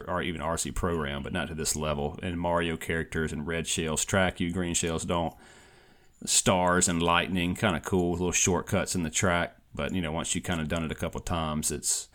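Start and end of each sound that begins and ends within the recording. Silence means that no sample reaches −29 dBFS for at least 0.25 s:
0:06.25–0:09.46

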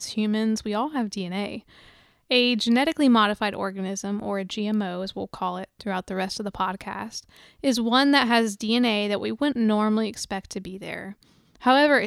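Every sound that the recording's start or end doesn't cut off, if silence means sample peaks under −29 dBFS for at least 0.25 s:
0:02.31–0:07.19
0:07.64–0:11.09

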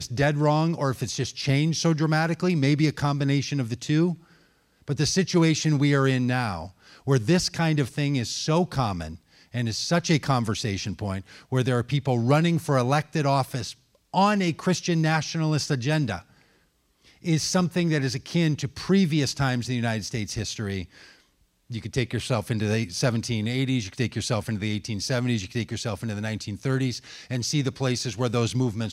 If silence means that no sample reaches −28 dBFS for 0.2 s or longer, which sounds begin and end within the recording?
0:04.89–0:06.63
0:07.07–0:09.07
0:09.54–0:11.20
0:11.52–0:13.71
0:14.14–0:16.18
0:17.26–0:20.82
0:21.72–0:26.98

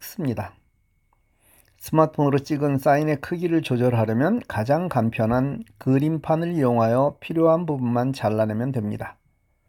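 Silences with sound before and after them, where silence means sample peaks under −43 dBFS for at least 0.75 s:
0:00.52–0:01.54

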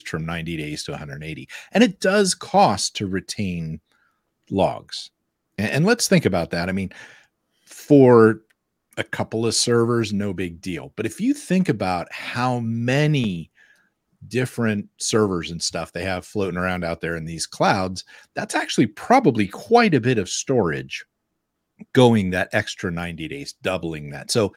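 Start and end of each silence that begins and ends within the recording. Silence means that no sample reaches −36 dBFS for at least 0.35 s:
0:03.77–0:04.51
0:05.07–0:05.58
0:07.07–0:07.70
0:08.38–0:08.93
0:13.44–0:14.23
0:21.02–0:21.81

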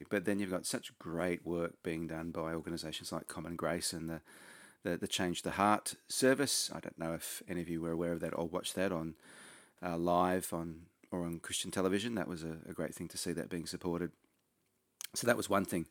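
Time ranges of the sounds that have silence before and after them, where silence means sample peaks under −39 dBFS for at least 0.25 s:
0:04.85–0:09.10
0:09.82–0:10.72
0:11.13–0:14.07

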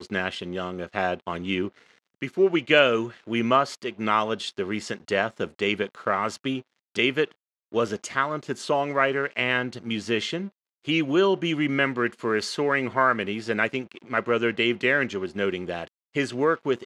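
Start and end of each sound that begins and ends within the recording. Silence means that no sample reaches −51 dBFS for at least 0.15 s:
0:02.21–0:06.62
0:06.95–0:07.32
0:07.72–0:10.49
0:10.84–0:15.88

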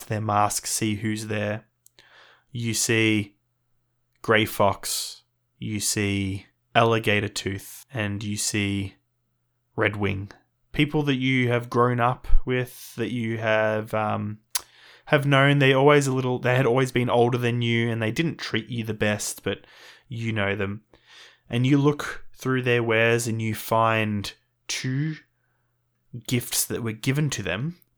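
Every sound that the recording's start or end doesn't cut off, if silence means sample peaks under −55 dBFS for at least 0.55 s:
0:04.13–0:08.96
0:09.75–0:25.24

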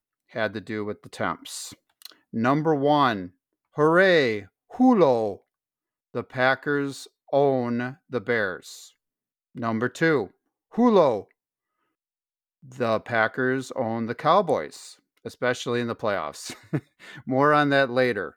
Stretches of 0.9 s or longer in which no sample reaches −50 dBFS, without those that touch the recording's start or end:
0:11.31–0:12.63

